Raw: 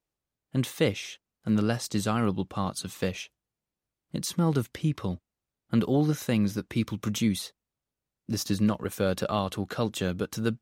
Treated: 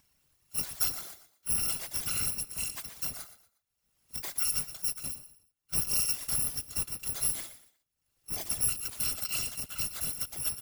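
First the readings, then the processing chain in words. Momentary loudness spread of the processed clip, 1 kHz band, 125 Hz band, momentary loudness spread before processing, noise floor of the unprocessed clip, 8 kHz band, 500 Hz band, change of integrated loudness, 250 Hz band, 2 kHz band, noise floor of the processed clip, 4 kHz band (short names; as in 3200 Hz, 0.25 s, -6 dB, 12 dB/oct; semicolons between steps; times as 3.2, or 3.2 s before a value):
10 LU, -13.5 dB, -17.0 dB, 8 LU, under -85 dBFS, +8.5 dB, -22.0 dB, -1.5 dB, -24.5 dB, -6.0 dB, -82 dBFS, 0.0 dB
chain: FFT order left unsorted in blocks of 256 samples; upward compressor, threshold -46 dBFS; on a send: feedback echo 0.119 s, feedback 31%, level -13 dB; on the sum: whisperiser; gain -5.5 dB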